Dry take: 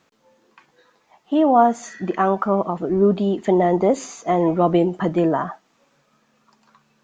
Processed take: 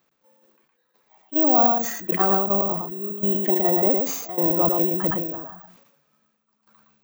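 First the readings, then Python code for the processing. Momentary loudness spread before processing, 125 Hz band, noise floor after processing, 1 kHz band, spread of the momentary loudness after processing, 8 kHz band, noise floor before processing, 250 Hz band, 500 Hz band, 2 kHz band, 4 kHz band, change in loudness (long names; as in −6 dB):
8 LU, −6.5 dB, −72 dBFS, −5.5 dB, 10 LU, can't be measured, −64 dBFS, −6.0 dB, −6.0 dB, −3.5 dB, −2.5 dB, −0.5 dB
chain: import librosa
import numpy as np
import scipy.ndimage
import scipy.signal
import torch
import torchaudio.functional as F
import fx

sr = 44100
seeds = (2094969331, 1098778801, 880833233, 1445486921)

p1 = fx.hum_notches(x, sr, base_hz=60, count=3)
p2 = fx.level_steps(p1, sr, step_db=20)
p3 = p1 + F.gain(torch.from_numpy(p2), 1.0).numpy()
p4 = fx.step_gate(p3, sr, bpm=144, pattern='x.xxx....xx', floor_db=-12.0, edge_ms=4.5)
p5 = p4 + fx.echo_single(p4, sr, ms=114, db=-4.5, dry=0)
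p6 = (np.kron(scipy.signal.resample_poly(p5, 1, 2), np.eye(2)[0]) * 2)[:len(p5)]
p7 = fx.sustainer(p6, sr, db_per_s=56.0)
y = F.gain(torch.from_numpy(p7), -10.5).numpy()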